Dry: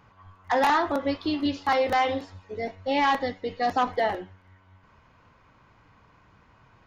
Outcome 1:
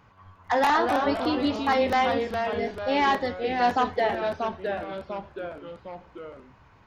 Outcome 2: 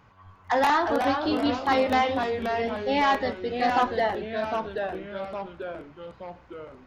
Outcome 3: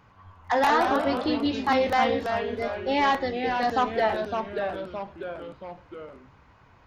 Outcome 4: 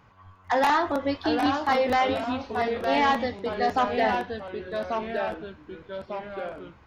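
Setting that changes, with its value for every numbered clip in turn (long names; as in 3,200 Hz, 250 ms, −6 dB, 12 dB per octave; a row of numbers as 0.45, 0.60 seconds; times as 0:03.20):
delay with pitch and tempo change per echo, delay time: 177, 294, 98, 679 milliseconds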